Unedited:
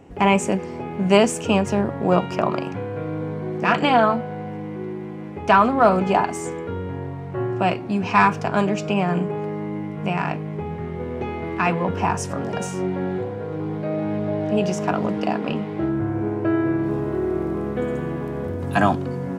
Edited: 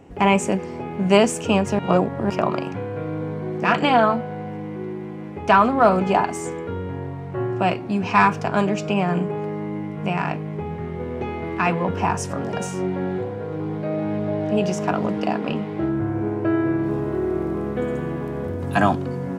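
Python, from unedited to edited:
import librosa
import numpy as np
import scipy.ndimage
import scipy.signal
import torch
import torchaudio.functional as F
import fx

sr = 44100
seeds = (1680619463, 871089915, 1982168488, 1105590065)

y = fx.edit(x, sr, fx.reverse_span(start_s=1.79, length_s=0.51), tone=tone)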